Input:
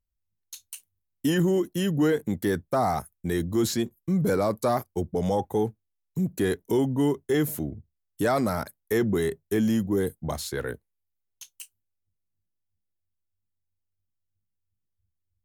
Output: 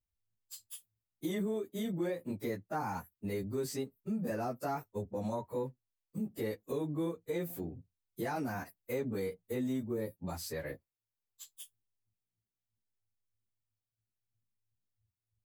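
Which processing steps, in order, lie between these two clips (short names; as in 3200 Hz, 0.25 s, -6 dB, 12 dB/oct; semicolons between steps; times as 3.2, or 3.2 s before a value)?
pitch shift by moving bins +2.5 st; compressor 2:1, threshold -38 dBFS, peak gain reduction 10.5 dB; gain -1.5 dB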